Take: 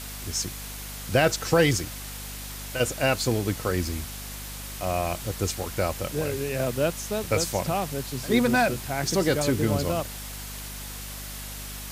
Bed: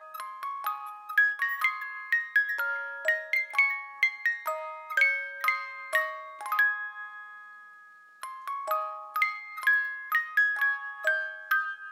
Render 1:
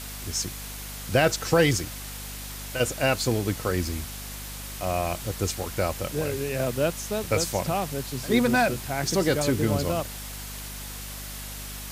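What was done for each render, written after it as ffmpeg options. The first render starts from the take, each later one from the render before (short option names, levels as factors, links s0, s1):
-af anull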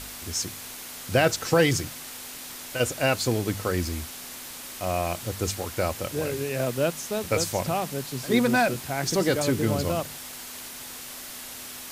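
-af "bandreject=f=50:t=h:w=4,bandreject=f=100:t=h:w=4,bandreject=f=150:t=h:w=4,bandreject=f=200:t=h:w=4"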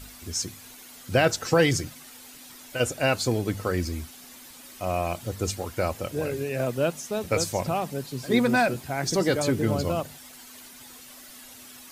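-af "afftdn=nr=10:nf=-40"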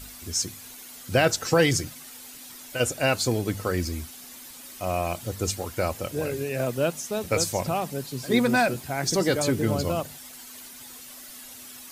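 -af "highshelf=f=5000:g=4.5"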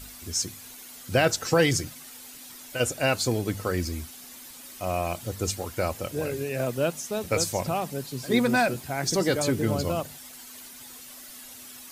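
-af "volume=0.891"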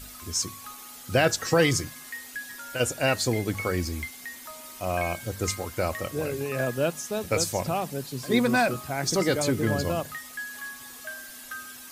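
-filter_complex "[1:a]volume=0.237[s0];[0:a][s0]amix=inputs=2:normalize=0"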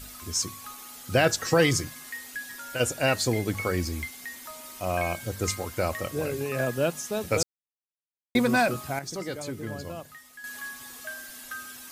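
-filter_complex "[0:a]asplit=5[s0][s1][s2][s3][s4];[s0]atrim=end=7.43,asetpts=PTS-STARTPTS,afade=t=out:st=7.426:d=0.004:c=hsin[s5];[s1]atrim=start=7.43:end=8.35,asetpts=PTS-STARTPTS,volume=0[s6];[s2]atrim=start=8.35:end=8.992,asetpts=PTS-STARTPTS,afade=t=in:d=0.004:c=hsin[s7];[s3]atrim=start=8.988:end=10.442,asetpts=PTS-STARTPTS,volume=0.316[s8];[s4]atrim=start=10.438[s9];[s5][s6][s7]concat=n=3:v=0:a=1[s10];[s10][s8]acrossfade=d=0.004:c1=hsin:c2=hsin[s11];[s11][s9]acrossfade=d=0.004:c1=hsin:c2=hsin"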